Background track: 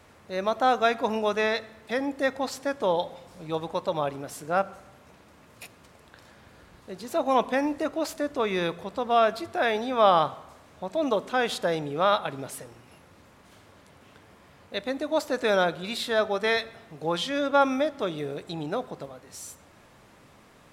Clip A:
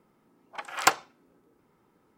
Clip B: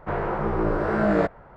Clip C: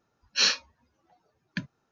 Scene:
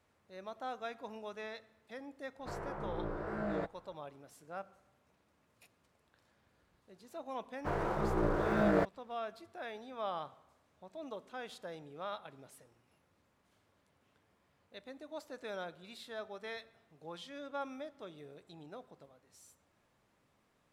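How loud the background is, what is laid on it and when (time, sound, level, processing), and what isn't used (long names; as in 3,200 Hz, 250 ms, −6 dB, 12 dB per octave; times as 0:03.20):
background track −19.5 dB
0:02.39: mix in B −16 dB
0:07.58: mix in B −7.5 dB + dead-zone distortion −43 dBFS
not used: A, C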